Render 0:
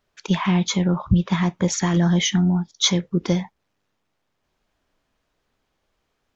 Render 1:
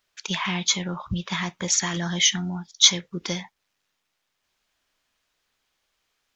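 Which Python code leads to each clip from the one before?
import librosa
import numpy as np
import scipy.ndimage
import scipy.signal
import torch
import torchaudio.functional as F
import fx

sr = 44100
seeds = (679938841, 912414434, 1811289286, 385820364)

y = fx.tilt_shelf(x, sr, db=-8.5, hz=1100.0)
y = y * librosa.db_to_amplitude(-3.0)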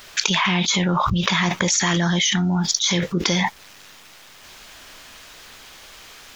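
y = fx.env_flatten(x, sr, amount_pct=100)
y = y * librosa.db_to_amplitude(-8.5)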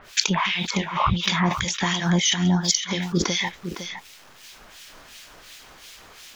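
y = fx.harmonic_tremolo(x, sr, hz=2.8, depth_pct=100, crossover_hz=1800.0)
y = y + 10.0 ** (-9.5 / 20.0) * np.pad(y, (int(508 * sr / 1000.0), 0))[:len(y)]
y = y * librosa.db_to_amplitude(2.0)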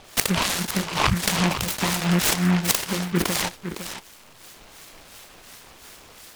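y = fx.noise_mod_delay(x, sr, seeds[0], noise_hz=1500.0, depth_ms=0.17)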